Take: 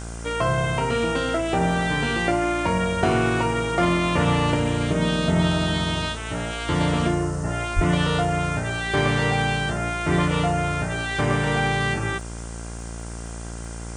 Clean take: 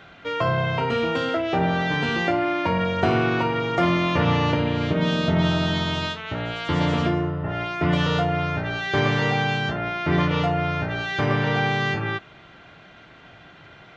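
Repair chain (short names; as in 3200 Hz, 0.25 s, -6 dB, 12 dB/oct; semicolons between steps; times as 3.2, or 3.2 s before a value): de-click; de-hum 57.4 Hz, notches 30; 7.75–7.87 HPF 140 Hz 24 dB/oct; noise print and reduce 14 dB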